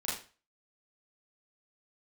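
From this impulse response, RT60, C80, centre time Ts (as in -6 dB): 0.35 s, 9.5 dB, 44 ms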